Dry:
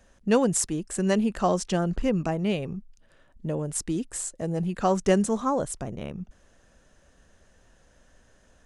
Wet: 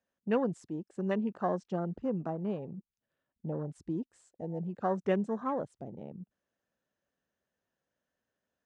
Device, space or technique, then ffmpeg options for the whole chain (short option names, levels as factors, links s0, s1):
over-cleaned archive recording: -filter_complex "[0:a]asettb=1/sr,asplit=3[s0][s1][s2];[s0]atrim=end=2.784[s3];[s1]atrim=start=2.78:end=4.36,asetpts=PTS-STARTPTS,afade=t=in:d=0.004:c=qsin,afade=t=out:st=1.576:d=0.004:c=qsin,lowshelf=f=150:g=7[s4];[s2]atrim=start=4.356[s5];[s3][s4]acrossfade=d=0.004:c1=hsin:c2=qsin[s6];[s6][s5]acrossfade=d=0.004:c1=qsin:c2=hsin,highpass=140,lowpass=5200,afwtdn=0.02,volume=0.422"